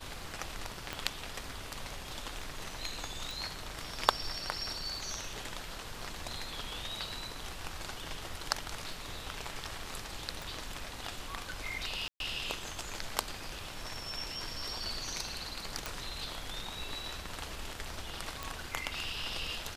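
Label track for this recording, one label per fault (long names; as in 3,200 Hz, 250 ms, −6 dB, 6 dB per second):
0.930000	0.930000	click −20 dBFS
3.310000	3.310000	click
10.420000	10.420000	click
12.080000	12.200000	drop-out 122 ms
15.860000	15.860000	click
18.430000	18.430000	click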